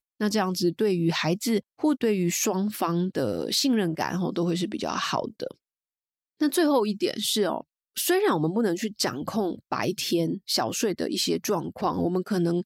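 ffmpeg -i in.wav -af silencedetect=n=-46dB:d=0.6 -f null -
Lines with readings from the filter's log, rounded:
silence_start: 5.52
silence_end: 6.41 | silence_duration: 0.89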